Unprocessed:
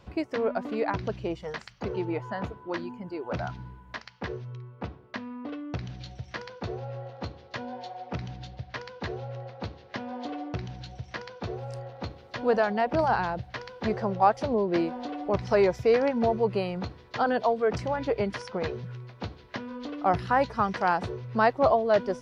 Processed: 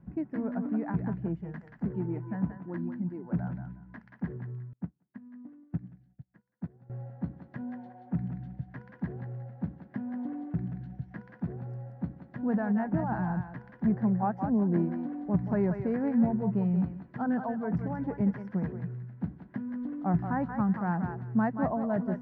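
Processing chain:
drawn EQ curve 100 Hz 0 dB, 170 Hz +15 dB, 280 Hz +7 dB, 460 Hz −9 dB, 820 Hz −6 dB, 1,200 Hz −11 dB, 1,700 Hz −4 dB, 2,500 Hz −19 dB, 4,100 Hz −29 dB
feedback echo with a high-pass in the loop 180 ms, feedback 23%, high-pass 610 Hz, level −5 dB
dynamic equaliser 970 Hz, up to +3 dB, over −39 dBFS, Q 1.4
0:04.73–0:06.90: expander for the loud parts 2.5 to 1, over −43 dBFS
level −5.5 dB

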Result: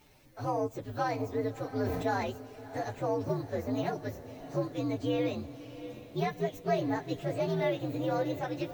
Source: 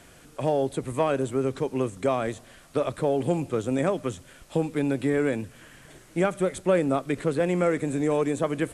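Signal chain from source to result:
partials spread apart or drawn together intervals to 123%
feedback delay with all-pass diffusion 665 ms, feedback 46%, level −13.5 dB
0:01.77–0:02.30: level that may fall only so fast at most 32 dB per second
level −5 dB

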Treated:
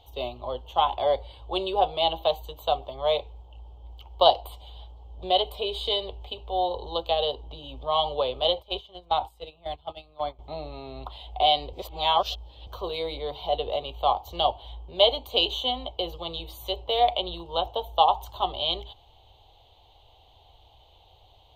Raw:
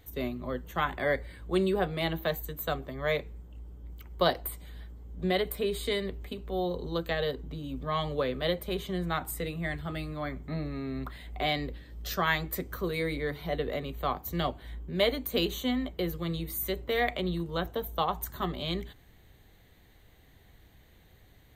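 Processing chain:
drawn EQ curve 100 Hz 0 dB, 190 Hz −18 dB, 870 Hz +15 dB, 1,800 Hz −21 dB, 3,000 Hz +13 dB, 8,100 Hz −11 dB, 14,000 Hz −13 dB
0:08.44–0:10.39: noise gate −30 dBFS, range −17 dB
0:11.73–0:12.67: reverse

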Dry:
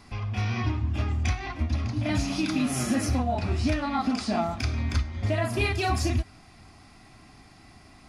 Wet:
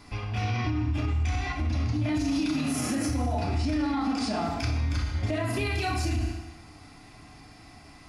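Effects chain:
feedback delay network reverb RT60 1 s, low-frequency decay 0.8×, high-frequency decay 0.9×, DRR 1 dB
brickwall limiter −20 dBFS, peak gain reduction 10.5 dB

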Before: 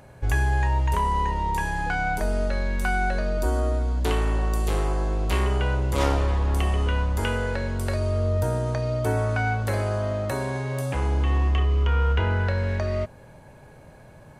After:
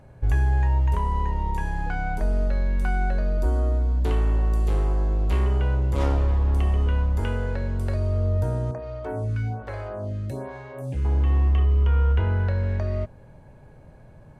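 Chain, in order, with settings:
spectral tilt −2 dB per octave
0:08.71–0:11.05: phaser with staggered stages 1.2 Hz
level −5.5 dB

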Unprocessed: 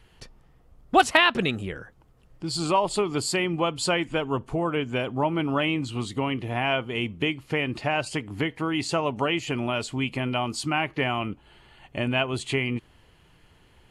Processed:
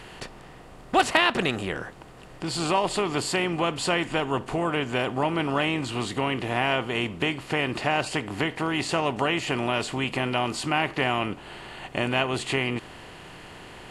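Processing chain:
compressor on every frequency bin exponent 0.6
level −4 dB

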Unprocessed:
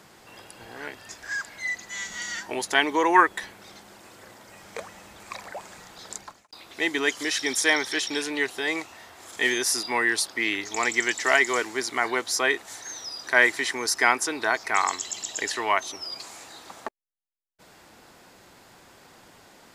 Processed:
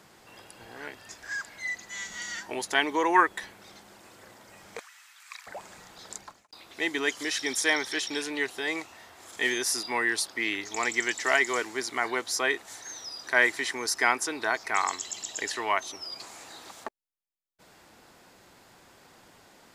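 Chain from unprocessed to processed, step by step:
0:04.79–0:05.47: high-pass filter 1,300 Hz 24 dB per octave
0:16.21–0:16.84: multiband upward and downward compressor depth 100%
level −3.5 dB

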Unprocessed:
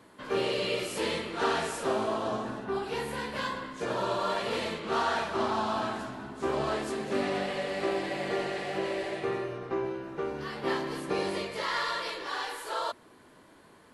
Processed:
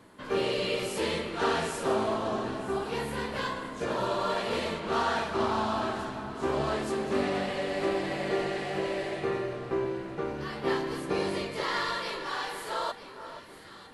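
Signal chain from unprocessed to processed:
low-shelf EQ 130 Hz +7.5 dB
mains-hum notches 60/120 Hz
on a send: delay that swaps between a low-pass and a high-pass 477 ms, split 1,500 Hz, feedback 68%, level −11 dB

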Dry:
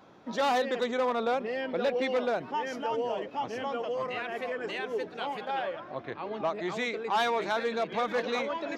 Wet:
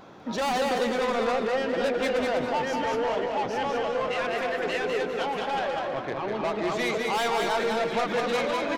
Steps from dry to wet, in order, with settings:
soft clipping −32 dBFS, distortion −9 dB
tape wow and flutter 24 cents
repeating echo 201 ms, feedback 31%, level −3.5 dB
on a send at −12.5 dB: convolution reverb RT60 1.6 s, pre-delay 118 ms
on the sum: level +7.5 dB

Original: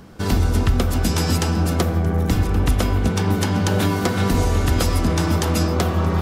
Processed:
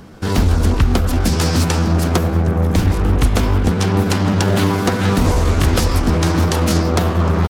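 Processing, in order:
tempo change 0.83×
highs frequency-modulated by the lows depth 0.52 ms
level +4 dB

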